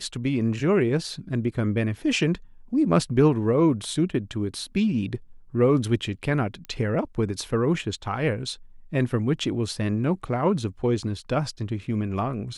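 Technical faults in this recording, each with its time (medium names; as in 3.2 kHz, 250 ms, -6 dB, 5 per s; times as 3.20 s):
6.65 s: pop -22 dBFS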